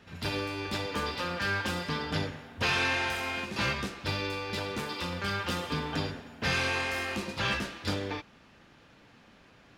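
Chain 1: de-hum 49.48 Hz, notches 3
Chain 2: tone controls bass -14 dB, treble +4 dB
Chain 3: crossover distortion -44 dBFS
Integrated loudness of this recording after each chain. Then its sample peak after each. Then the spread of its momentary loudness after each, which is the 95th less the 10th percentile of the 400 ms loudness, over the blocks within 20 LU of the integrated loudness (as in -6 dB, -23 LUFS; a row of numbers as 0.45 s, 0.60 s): -31.5 LUFS, -31.5 LUFS, -33.0 LUFS; -16.5 dBFS, -16.5 dBFS, -17.5 dBFS; 7 LU, 8 LU, 7 LU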